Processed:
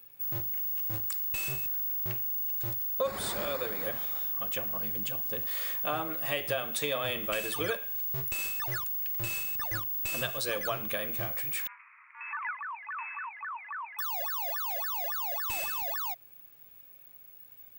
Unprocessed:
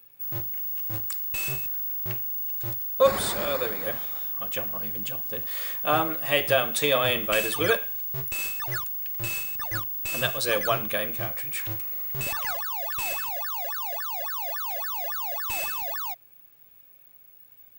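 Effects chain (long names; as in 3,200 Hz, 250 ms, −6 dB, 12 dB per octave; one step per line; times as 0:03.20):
0:11.67–0:13.99: Chebyshev band-pass filter 920–2,500 Hz, order 5
downward compressor 3 to 1, threshold −31 dBFS, peak gain reduction 13 dB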